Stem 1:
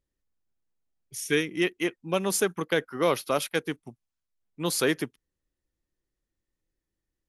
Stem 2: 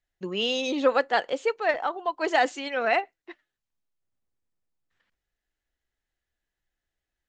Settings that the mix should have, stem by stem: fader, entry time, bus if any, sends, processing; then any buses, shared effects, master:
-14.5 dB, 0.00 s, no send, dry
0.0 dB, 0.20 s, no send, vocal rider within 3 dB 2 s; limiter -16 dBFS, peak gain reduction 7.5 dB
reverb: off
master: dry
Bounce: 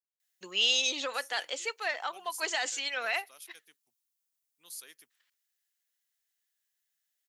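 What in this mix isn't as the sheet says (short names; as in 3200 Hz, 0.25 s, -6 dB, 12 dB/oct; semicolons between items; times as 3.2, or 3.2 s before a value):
stem 2 0.0 dB -> +10.0 dB; master: extra differentiator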